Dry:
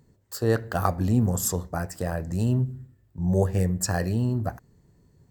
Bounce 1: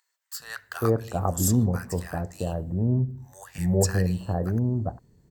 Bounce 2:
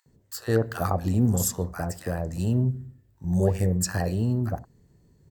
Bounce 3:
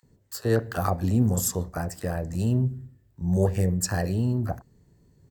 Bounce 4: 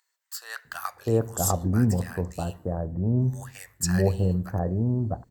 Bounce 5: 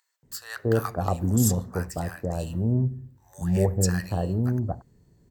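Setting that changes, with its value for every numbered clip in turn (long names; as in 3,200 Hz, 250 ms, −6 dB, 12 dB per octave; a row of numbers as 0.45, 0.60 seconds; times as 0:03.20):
multiband delay without the direct sound, delay time: 400, 60, 30, 650, 230 milliseconds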